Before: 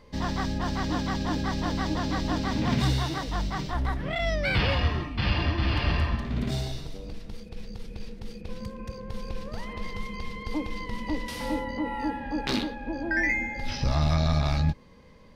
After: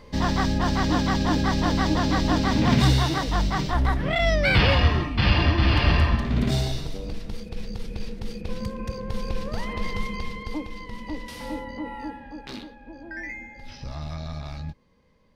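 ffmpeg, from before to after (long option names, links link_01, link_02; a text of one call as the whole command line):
ffmpeg -i in.wav -af "volume=6dB,afade=type=out:start_time=10:duration=0.68:silence=0.354813,afade=type=out:start_time=11.88:duration=0.54:silence=0.446684" out.wav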